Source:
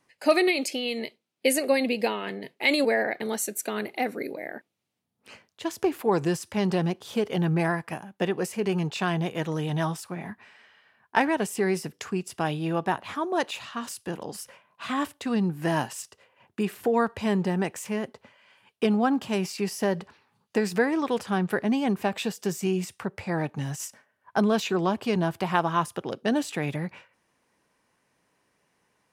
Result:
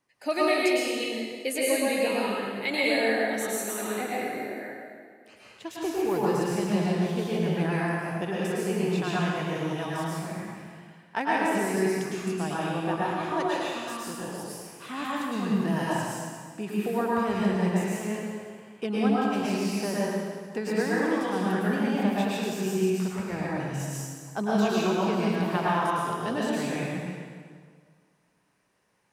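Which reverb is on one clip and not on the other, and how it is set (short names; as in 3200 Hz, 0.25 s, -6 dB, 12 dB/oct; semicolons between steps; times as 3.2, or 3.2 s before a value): plate-style reverb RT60 1.8 s, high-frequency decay 0.85×, pre-delay 95 ms, DRR -7 dB; gain -8 dB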